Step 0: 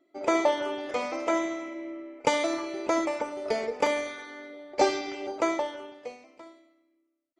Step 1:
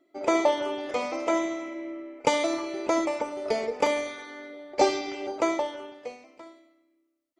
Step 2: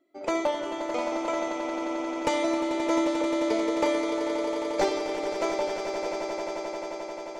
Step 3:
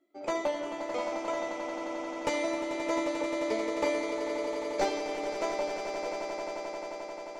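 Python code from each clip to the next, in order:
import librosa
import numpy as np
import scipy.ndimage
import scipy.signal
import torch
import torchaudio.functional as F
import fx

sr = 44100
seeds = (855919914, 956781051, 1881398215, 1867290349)

y1 = fx.dynamic_eq(x, sr, hz=1600.0, q=2.9, threshold_db=-47.0, ratio=4.0, max_db=-5)
y1 = y1 * 10.0 ** (1.5 / 20.0)
y2 = np.minimum(y1, 2.0 * 10.0 ** (-14.5 / 20.0) - y1)
y2 = fx.echo_swell(y2, sr, ms=88, loudest=8, wet_db=-11)
y2 = y2 * 10.0 ** (-4.0 / 20.0)
y3 = fx.doubler(y2, sr, ms=14.0, db=-5.0)
y3 = y3 * 10.0 ** (-4.5 / 20.0)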